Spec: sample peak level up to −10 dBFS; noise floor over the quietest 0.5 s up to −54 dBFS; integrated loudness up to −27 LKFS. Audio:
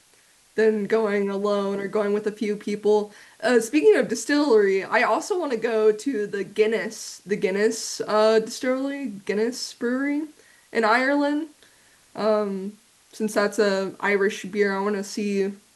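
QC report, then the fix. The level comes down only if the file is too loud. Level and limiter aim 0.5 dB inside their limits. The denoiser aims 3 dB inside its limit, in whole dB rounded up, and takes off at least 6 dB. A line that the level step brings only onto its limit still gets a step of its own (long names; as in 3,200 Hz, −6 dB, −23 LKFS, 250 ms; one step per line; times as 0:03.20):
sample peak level −7.0 dBFS: out of spec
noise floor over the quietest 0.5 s −58 dBFS: in spec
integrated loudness −23.0 LKFS: out of spec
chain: level −4.5 dB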